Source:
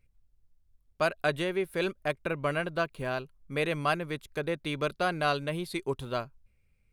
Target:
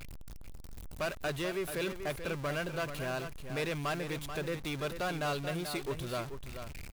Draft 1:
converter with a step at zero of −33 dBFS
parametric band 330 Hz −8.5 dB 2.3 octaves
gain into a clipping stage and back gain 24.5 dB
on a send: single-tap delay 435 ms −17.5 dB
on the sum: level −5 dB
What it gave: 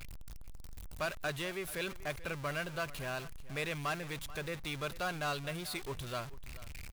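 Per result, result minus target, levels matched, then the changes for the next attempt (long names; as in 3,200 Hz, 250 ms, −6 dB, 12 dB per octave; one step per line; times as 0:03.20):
echo-to-direct −8.5 dB; 250 Hz band −3.0 dB
change: single-tap delay 435 ms −9 dB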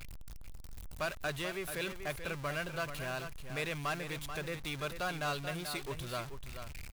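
250 Hz band −3.0 dB
change: parametric band 330 Hz −2 dB 2.3 octaves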